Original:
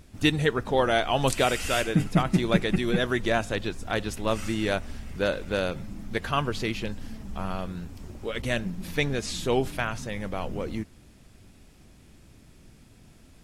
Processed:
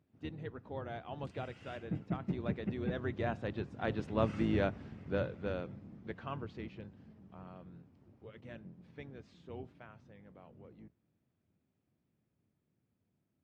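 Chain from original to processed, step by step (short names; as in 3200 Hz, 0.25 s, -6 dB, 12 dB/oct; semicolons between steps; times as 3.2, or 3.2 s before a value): octaver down 2 oct, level +4 dB; Doppler pass-by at 4.37, 8 m/s, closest 5 m; HPF 96 Hz 24 dB/oct; tape spacing loss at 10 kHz 31 dB; gain -3 dB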